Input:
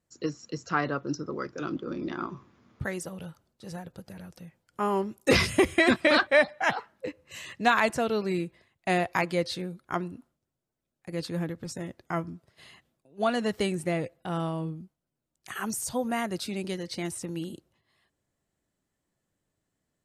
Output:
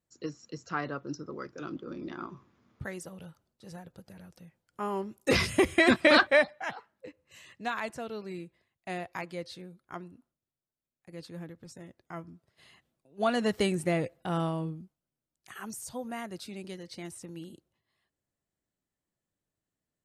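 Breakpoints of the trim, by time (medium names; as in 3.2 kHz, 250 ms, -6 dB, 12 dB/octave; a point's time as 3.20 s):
4.97 s -6 dB
6.24 s +2 dB
6.70 s -11 dB
12.13 s -11 dB
13.47 s +0.5 dB
14.42 s +0.5 dB
15.51 s -8.5 dB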